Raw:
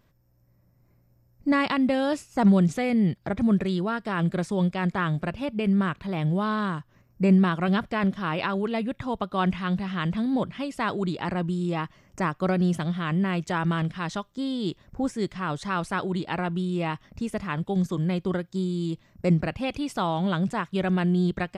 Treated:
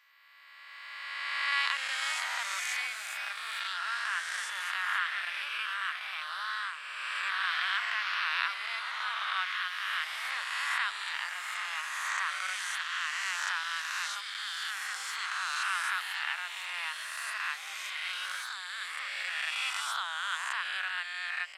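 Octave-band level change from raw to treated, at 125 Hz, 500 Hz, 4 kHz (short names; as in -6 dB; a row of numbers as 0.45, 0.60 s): under -40 dB, -29.0 dB, +5.5 dB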